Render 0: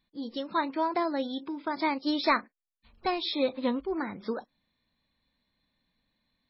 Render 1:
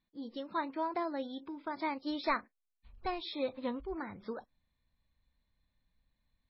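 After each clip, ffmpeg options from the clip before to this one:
-af "lowpass=f=2.9k:p=1,asubboost=boost=5.5:cutoff=100,volume=-6dB"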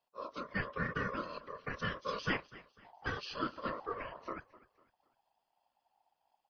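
-af "aecho=1:1:250|500|750:0.1|0.039|0.0152,afftfilt=real='hypot(re,im)*cos(2*PI*random(0))':imag='hypot(re,im)*sin(2*PI*random(1))':win_size=512:overlap=0.75,aeval=exprs='val(0)*sin(2*PI*810*n/s)':c=same,volume=7dB"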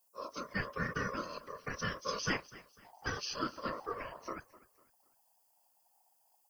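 -af "aexciter=amount=7.7:drive=6.9:freq=5.5k"

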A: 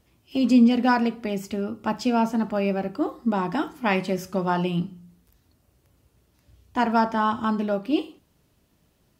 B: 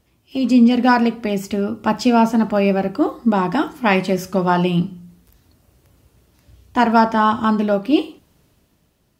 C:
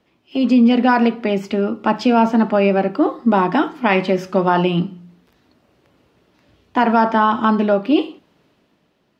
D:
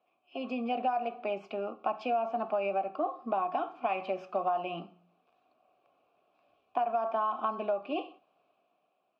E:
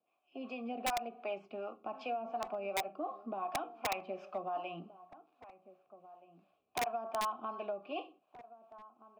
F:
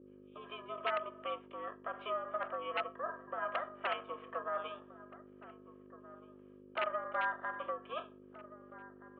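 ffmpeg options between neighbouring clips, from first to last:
-af "dynaudnorm=f=100:g=13:m=6.5dB,volume=1.5dB"
-filter_complex "[0:a]alimiter=limit=-8dB:level=0:latency=1:release=49,acrossover=split=170 4500:gain=0.126 1 0.112[a][b][c];[a][b][c]amix=inputs=3:normalize=0,volume=3.5dB"
-filter_complex "[0:a]asplit=3[a][b][c];[a]bandpass=f=730:t=q:w=8,volume=0dB[d];[b]bandpass=f=1.09k:t=q:w=8,volume=-6dB[e];[c]bandpass=f=2.44k:t=q:w=8,volume=-9dB[f];[d][e][f]amix=inputs=3:normalize=0,acompressor=threshold=-27dB:ratio=6"
-filter_complex "[0:a]acrossover=split=450[a][b];[a]aeval=exprs='val(0)*(1-0.7/2+0.7/2*cos(2*PI*2.7*n/s))':c=same[c];[b]aeval=exprs='val(0)*(1-0.7/2-0.7/2*cos(2*PI*2.7*n/s))':c=same[d];[c][d]amix=inputs=2:normalize=0,acrossover=split=1600[e][f];[e]aeval=exprs='(mod(16.8*val(0)+1,2)-1)/16.8':c=same[g];[g][f]amix=inputs=2:normalize=0,asplit=2[h][i];[i]adelay=1574,volume=-16dB,highshelf=f=4k:g=-35.4[j];[h][j]amix=inputs=2:normalize=0,volume=-3.5dB"
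-af "highpass=f=550:t=q:w=0.5412,highpass=f=550:t=q:w=1.307,lowpass=f=2.6k:t=q:w=0.5176,lowpass=f=2.6k:t=q:w=0.7071,lowpass=f=2.6k:t=q:w=1.932,afreqshift=220,aeval=exprs='val(0)+0.00141*(sin(2*PI*50*n/s)+sin(2*PI*2*50*n/s)/2+sin(2*PI*3*50*n/s)/3+sin(2*PI*4*50*n/s)/4+sin(2*PI*5*50*n/s)/5)':c=same,aeval=exprs='val(0)*sin(2*PI*310*n/s)':c=same,volume=4dB"

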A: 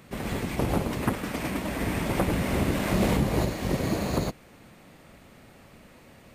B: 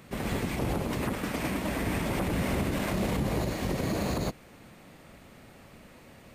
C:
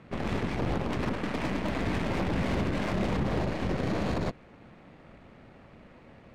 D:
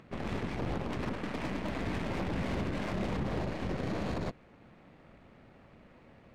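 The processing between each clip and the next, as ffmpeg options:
-af "alimiter=limit=-20.5dB:level=0:latency=1:release=47"
-af "adynamicsmooth=sensitivity=2:basefreq=3k,aeval=exprs='0.0944*(cos(1*acos(clip(val(0)/0.0944,-1,1)))-cos(1*PI/2))+0.0119*(cos(8*acos(clip(val(0)/0.0944,-1,1)))-cos(8*PI/2))':c=same"
-af "acompressor=mode=upward:threshold=-49dB:ratio=2.5,volume=-5dB"

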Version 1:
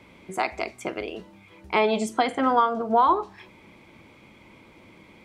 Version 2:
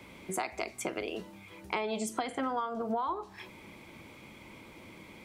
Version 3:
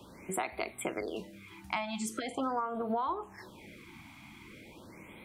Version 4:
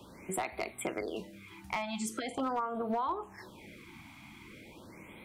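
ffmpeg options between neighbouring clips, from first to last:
-filter_complex "[0:a]highshelf=f=7.3k:g=10.5,acrossover=split=110[a][b];[a]alimiter=level_in=29dB:limit=-24dB:level=0:latency=1:release=489,volume=-29dB[c];[b]acompressor=threshold=-31dB:ratio=6[d];[c][d]amix=inputs=2:normalize=0"
-af "afftfilt=real='re*(1-between(b*sr/1024,430*pow(6600/430,0.5+0.5*sin(2*PI*0.42*pts/sr))/1.41,430*pow(6600/430,0.5+0.5*sin(2*PI*0.42*pts/sr))*1.41))':imag='im*(1-between(b*sr/1024,430*pow(6600/430,0.5+0.5*sin(2*PI*0.42*pts/sr))/1.41,430*pow(6600/430,0.5+0.5*sin(2*PI*0.42*pts/sr))*1.41))':win_size=1024:overlap=0.75"
-af "aeval=exprs='clip(val(0),-1,0.0501)':c=same"

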